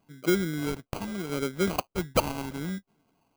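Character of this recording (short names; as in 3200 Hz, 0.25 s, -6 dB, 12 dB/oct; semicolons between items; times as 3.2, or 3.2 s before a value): phasing stages 2, 0.75 Hz, lowest notch 390–1600 Hz; aliases and images of a low sample rate 1800 Hz, jitter 0%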